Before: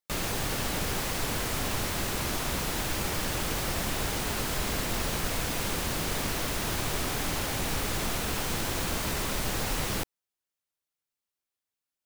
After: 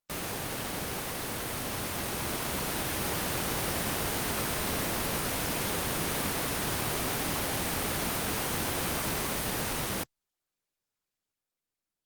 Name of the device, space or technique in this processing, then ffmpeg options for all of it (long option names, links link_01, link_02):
video call: -af "highpass=frequency=120:poles=1,dynaudnorm=framelen=350:gausssize=13:maxgain=4.5dB,volume=-2.5dB" -ar 48000 -c:a libopus -b:a 32k